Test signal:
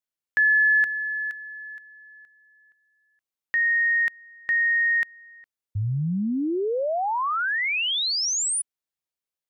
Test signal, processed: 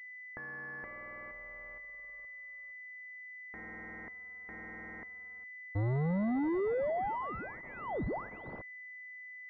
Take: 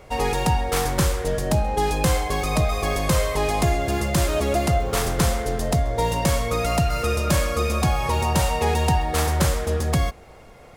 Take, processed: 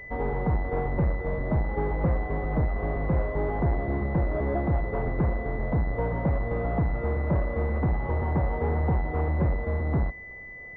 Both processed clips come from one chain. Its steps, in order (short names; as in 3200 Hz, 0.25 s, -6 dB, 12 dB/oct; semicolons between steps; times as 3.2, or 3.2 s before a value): half-waves squared off; pulse-width modulation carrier 2000 Hz; gain -8.5 dB